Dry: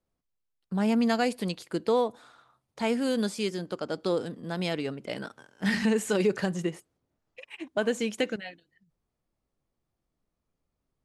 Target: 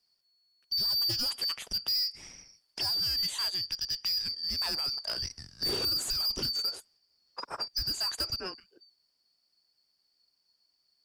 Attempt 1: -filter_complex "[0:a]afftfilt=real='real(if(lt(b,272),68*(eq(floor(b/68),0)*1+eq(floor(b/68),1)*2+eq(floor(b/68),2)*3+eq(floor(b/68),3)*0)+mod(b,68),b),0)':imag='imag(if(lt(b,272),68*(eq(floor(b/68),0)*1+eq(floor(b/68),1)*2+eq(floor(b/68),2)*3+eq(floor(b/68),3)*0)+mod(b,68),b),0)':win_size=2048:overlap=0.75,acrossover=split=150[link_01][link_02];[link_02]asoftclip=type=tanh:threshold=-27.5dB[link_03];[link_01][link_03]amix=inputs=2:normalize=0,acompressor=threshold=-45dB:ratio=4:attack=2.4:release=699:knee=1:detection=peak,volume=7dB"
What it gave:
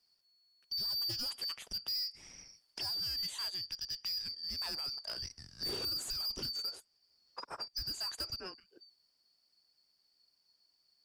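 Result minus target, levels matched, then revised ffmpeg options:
downward compressor: peak gain reduction +7 dB
-filter_complex "[0:a]afftfilt=real='real(if(lt(b,272),68*(eq(floor(b/68),0)*1+eq(floor(b/68),1)*2+eq(floor(b/68),2)*3+eq(floor(b/68),3)*0)+mod(b,68),b),0)':imag='imag(if(lt(b,272),68*(eq(floor(b/68),0)*1+eq(floor(b/68),1)*2+eq(floor(b/68),2)*3+eq(floor(b/68),3)*0)+mod(b,68),b),0)':win_size=2048:overlap=0.75,acrossover=split=150[link_01][link_02];[link_02]asoftclip=type=tanh:threshold=-27.5dB[link_03];[link_01][link_03]amix=inputs=2:normalize=0,acompressor=threshold=-35.5dB:ratio=4:attack=2.4:release=699:knee=1:detection=peak,volume=7dB"

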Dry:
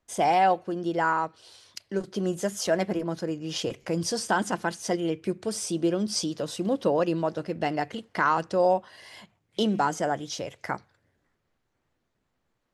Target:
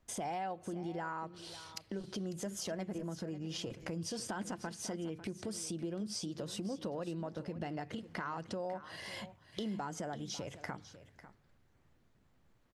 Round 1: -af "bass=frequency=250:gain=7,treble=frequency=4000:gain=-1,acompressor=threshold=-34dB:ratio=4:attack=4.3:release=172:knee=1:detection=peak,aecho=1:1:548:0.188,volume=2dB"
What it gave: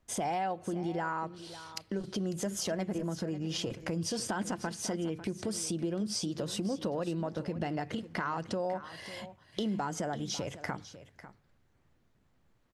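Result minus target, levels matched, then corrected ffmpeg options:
downward compressor: peak gain reduction −6 dB
-af "bass=frequency=250:gain=7,treble=frequency=4000:gain=-1,acompressor=threshold=-42dB:ratio=4:attack=4.3:release=172:knee=1:detection=peak,aecho=1:1:548:0.188,volume=2dB"

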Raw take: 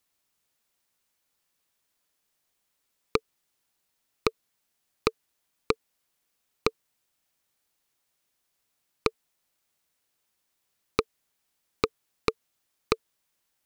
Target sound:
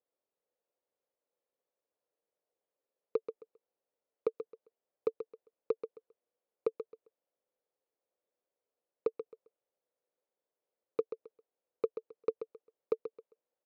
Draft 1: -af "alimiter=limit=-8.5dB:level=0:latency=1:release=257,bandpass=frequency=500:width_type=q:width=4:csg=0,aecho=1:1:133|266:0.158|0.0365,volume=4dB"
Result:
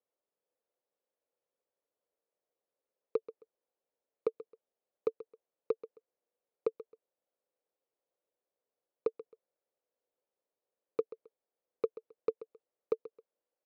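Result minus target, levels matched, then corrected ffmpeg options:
echo-to-direct −6 dB
-af "alimiter=limit=-8.5dB:level=0:latency=1:release=257,bandpass=frequency=500:width_type=q:width=4:csg=0,aecho=1:1:133|266|399:0.316|0.0727|0.0167,volume=4dB"

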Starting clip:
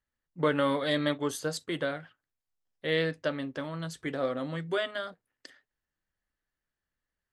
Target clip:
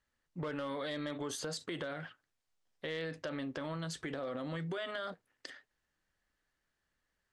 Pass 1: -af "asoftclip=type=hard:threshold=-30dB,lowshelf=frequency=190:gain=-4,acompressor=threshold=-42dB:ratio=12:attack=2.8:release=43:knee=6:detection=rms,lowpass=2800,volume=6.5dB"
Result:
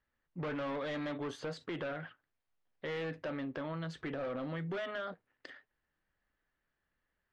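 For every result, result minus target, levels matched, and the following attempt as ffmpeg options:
8,000 Hz band −14.5 dB; hard clipping: distortion +16 dB
-af "asoftclip=type=hard:threshold=-30dB,lowshelf=frequency=190:gain=-4,acompressor=threshold=-42dB:ratio=12:attack=2.8:release=43:knee=6:detection=rms,lowpass=8400,volume=6.5dB"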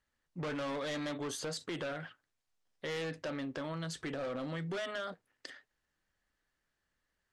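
hard clipping: distortion +16 dB
-af "asoftclip=type=hard:threshold=-19.5dB,lowshelf=frequency=190:gain=-4,acompressor=threshold=-42dB:ratio=12:attack=2.8:release=43:knee=6:detection=rms,lowpass=8400,volume=6.5dB"

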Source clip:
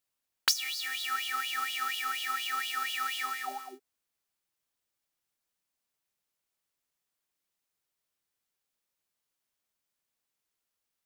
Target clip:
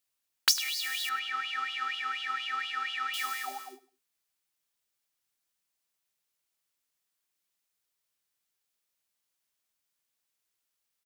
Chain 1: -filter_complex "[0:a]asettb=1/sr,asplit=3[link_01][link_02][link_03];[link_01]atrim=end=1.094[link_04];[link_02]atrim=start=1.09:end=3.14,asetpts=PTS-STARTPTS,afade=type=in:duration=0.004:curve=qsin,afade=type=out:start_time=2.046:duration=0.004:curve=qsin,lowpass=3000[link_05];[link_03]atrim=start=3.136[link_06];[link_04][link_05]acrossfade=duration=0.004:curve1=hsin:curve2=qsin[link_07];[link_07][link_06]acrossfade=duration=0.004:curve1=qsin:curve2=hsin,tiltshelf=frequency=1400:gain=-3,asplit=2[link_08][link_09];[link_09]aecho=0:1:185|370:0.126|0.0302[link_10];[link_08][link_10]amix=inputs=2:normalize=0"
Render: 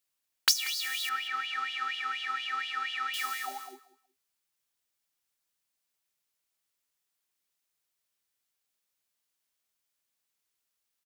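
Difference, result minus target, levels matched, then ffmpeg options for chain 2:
echo 83 ms late
-filter_complex "[0:a]asettb=1/sr,asplit=3[link_01][link_02][link_03];[link_01]atrim=end=1.094[link_04];[link_02]atrim=start=1.09:end=3.14,asetpts=PTS-STARTPTS,afade=type=in:duration=0.004:curve=qsin,afade=type=out:start_time=2.046:duration=0.004:curve=qsin,lowpass=3000[link_05];[link_03]atrim=start=3.136[link_06];[link_04][link_05]acrossfade=duration=0.004:curve1=hsin:curve2=qsin[link_07];[link_07][link_06]acrossfade=duration=0.004:curve1=qsin:curve2=hsin,tiltshelf=frequency=1400:gain=-3,asplit=2[link_08][link_09];[link_09]aecho=0:1:102|204:0.126|0.0302[link_10];[link_08][link_10]amix=inputs=2:normalize=0"

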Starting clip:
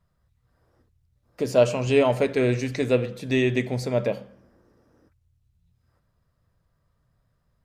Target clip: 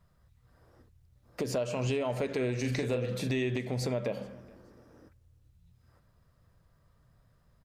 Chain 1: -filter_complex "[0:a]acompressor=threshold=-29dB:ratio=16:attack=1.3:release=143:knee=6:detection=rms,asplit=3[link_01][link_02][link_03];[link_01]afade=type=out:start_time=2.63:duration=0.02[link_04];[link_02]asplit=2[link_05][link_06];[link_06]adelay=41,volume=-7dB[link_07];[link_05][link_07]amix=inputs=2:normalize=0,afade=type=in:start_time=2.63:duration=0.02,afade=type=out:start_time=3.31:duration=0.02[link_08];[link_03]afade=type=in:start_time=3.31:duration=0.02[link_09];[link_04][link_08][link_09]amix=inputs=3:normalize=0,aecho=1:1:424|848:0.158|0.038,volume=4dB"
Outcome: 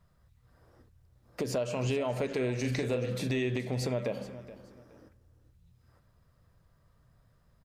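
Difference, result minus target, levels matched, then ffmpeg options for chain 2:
echo-to-direct +9.5 dB
-filter_complex "[0:a]acompressor=threshold=-29dB:ratio=16:attack=1.3:release=143:knee=6:detection=rms,asplit=3[link_01][link_02][link_03];[link_01]afade=type=out:start_time=2.63:duration=0.02[link_04];[link_02]asplit=2[link_05][link_06];[link_06]adelay=41,volume=-7dB[link_07];[link_05][link_07]amix=inputs=2:normalize=0,afade=type=in:start_time=2.63:duration=0.02,afade=type=out:start_time=3.31:duration=0.02[link_08];[link_03]afade=type=in:start_time=3.31:duration=0.02[link_09];[link_04][link_08][link_09]amix=inputs=3:normalize=0,aecho=1:1:424|848:0.0531|0.0127,volume=4dB"

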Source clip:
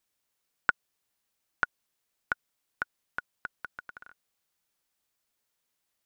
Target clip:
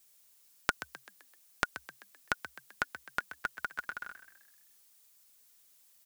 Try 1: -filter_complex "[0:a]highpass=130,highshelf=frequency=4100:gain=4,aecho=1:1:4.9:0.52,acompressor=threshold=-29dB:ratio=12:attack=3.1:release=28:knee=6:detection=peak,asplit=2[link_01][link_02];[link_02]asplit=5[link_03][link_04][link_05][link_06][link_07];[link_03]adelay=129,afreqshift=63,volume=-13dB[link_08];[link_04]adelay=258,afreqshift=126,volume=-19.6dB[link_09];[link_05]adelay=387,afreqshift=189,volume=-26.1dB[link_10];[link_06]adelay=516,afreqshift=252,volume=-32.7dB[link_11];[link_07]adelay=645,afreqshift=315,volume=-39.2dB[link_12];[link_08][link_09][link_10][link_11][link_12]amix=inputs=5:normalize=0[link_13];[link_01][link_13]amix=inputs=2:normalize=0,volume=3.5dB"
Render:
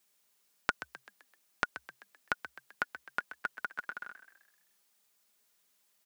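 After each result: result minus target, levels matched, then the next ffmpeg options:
8,000 Hz band −6.5 dB; 125 Hz band −3.5 dB
-filter_complex "[0:a]highpass=130,highshelf=frequency=4100:gain=14,aecho=1:1:4.9:0.52,acompressor=threshold=-29dB:ratio=12:attack=3.1:release=28:knee=6:detection=peak,asplit=2[link_01][link_02];[link_02]asplit=5[link_03][link_04][link_05][link_06][link_07];[link_03]adelay=129,afreqshift=63,volume=-13dB[link_08];[link_04]adelay=258,afreqshift=126,volume=-19.6dB[link_09];[link_05]adelay=387,afreqshift=189,volume=-26.1dB[link_10];[link_06]adelay=516,afreqshift=252,volume=-32.7dB[link_11];[link_07]adelay=645,afreqshift=315,volume=-39.2dB[link_12];[link_08][link_09][link_10][link_11][link_12]amix=inputs=5:normalize=0[link_13];[link_01][link_13]amix=inputs=2:normalize=0,volume=3.5dB"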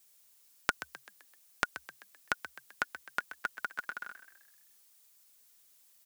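125 Hz band −3.5 dB
-filter_complex "[0:a]highshelf=frequency=4100:gain=14,aecho=1:1:4.9:0.52,acompressor=threshold=-29dB:ratio=12:attack=3.1:release=28:knee=6:detection=peak,asplit=2[link_01][link_02];[link_02]asplit=5[link_03][link_04][link_05][link_06][link_07];[link_03]adelay=129,afreqshift=63,volume=-13dB[link_08];[link_04]adelay=258,afreqshift=126,volume=-19.6dB[link_09];[link_05]adelay=387,afreqshift=189,volume=-26.1dB[link_10];[link_06]adelay=516,afreqshift=252,volume=-32.7dB[link_11];[link_07]adelay=645,afreqshift=315,volume=-39.2dB[link_12];[link_08][link_09][link_10][link_11][link_12]amix=inputs=5:normalize=0[link_13];[link_01][link_13]amix=inputs=2:normalize=0,volume=3.5dB"

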